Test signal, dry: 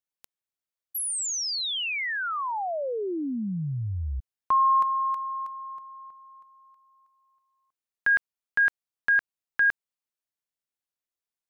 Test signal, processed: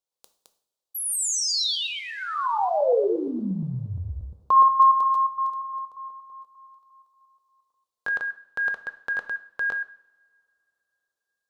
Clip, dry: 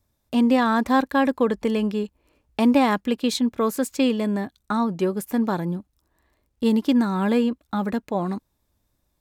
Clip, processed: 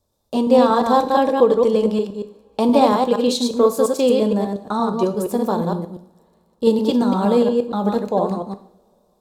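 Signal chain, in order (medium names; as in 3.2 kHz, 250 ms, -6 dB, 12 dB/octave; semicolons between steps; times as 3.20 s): chunks repeated in reverse 117 ms, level -3 dB; graphic EQ 500/1000/2000/4000/8000 Hz +10/+6/-10/+7/+4 dB; two-slope reverb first 0.58 s, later 3.5 s, from -28 dB, DRR 9 dB; trim -3 dB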